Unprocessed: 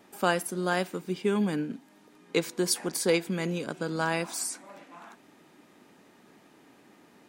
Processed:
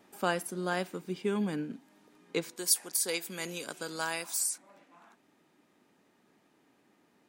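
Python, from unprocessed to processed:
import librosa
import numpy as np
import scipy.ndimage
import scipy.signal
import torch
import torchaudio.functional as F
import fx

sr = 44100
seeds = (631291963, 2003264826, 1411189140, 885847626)

y = fx.riaa(x, sr, side='recording', at=(2.56, 4.58))
y = fx.rider(y, sr, range_db=3, speed_s=0.5)
y = y * librosa.db_to_amplitude(-7.5)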